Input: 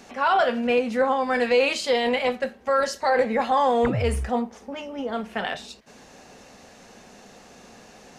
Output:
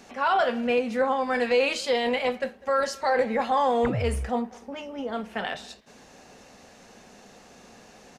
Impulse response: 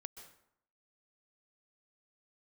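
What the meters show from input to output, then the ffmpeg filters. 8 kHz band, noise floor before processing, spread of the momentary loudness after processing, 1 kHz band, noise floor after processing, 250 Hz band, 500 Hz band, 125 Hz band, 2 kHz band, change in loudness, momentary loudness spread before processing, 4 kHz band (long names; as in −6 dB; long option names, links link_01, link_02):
−2.5 dB, −50 dBFS, 11 LU, −2.5 dB, −52 dBFS, −2.5 dB, −2.5 dB, −2.5 dB, −2.5 dB, −2.5 dB, 11 LU, −2.5 dB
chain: -filter_complex "[0:a]asplit=2[link_01][link_02];[link_02]adelay=200,highpass=300,lowpass=3400,asoftclip=type=hard:threshold=-19dB,volume=-21dB[link_03];[link_01][link_03]amix=inputs=2:normalize=0,volume=-2.5dB"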